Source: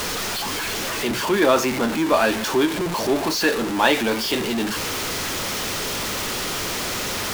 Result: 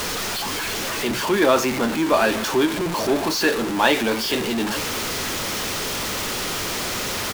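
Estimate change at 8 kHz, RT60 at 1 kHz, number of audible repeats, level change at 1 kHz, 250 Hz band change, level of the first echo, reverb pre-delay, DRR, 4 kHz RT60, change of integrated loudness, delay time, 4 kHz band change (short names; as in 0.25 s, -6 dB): 0.0 dB, none, 1, 0.0 dB, 0.0 dB, -16.0 dB, none, none, none, 0.0 dB, 0.867 s, 0.0 dB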